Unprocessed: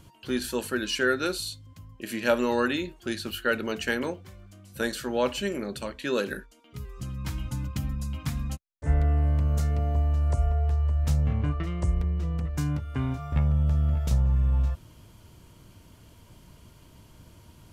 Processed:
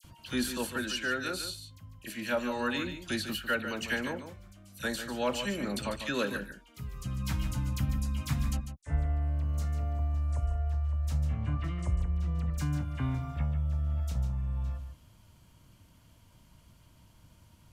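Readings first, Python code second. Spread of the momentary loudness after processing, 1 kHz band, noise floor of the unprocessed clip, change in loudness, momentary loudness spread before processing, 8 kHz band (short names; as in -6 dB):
8 LU, -4.0 dB, -55 dBFS, -5.0 dB, 11 LU, -2.0 dB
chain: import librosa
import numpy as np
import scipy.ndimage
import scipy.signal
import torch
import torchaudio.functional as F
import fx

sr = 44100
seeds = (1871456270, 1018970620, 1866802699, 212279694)

p1 = fx.peak_eq(x, sr, hz=400.0, db=-8.5, octaves=0.59)
p2 = fx.rider(p1, sr, range_db=10, speed_s=0.5)
p3 = fx.dispersion(p2, sr, late='lows', ms=44.0, hz=2200.0)
p4 = p3 + fx.echo_single(p3, sr, ms=147, db=-9.5, dry=0)
y = p4 * 10.0 ** (-4.5 / 20.0)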